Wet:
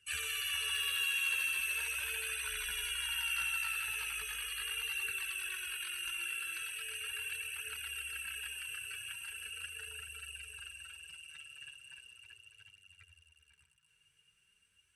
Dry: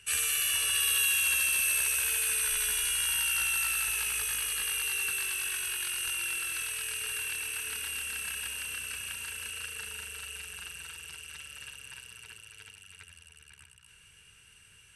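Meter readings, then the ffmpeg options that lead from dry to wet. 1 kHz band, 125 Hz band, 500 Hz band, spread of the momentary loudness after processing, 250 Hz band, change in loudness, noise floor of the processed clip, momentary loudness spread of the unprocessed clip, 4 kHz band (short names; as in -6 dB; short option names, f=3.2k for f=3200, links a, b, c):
-5.0 dB, n/a, -7.0 dB, 17 LU, under -10 dB, -7.5 dB, -73 dBFS, 18 LU, -5.0 dB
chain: -filter_complex "[0:a]acrossover=split=4700[a][b];[b]acompressor=threshold=-38dB:ratio=4:attack=1:release=60[c];[a][c]amix=inputs=2:normalize=0,afftdn=nr=13:nf=-44,highpass=f=40:p=1,asoftclip=type=hard:threshold=-24dB,flanger=delay=0.4:depth=7:regen=-19:speed=0.39:shape=triangular"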